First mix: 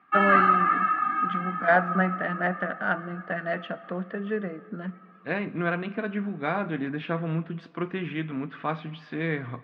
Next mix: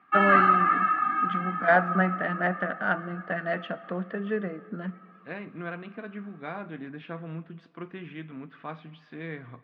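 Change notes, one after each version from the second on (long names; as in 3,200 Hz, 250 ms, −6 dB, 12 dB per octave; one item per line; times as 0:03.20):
second voice −9.0 dB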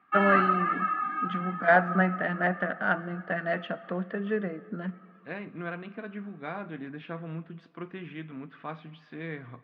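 background: send off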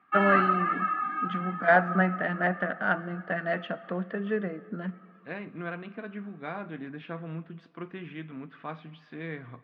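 nothing changed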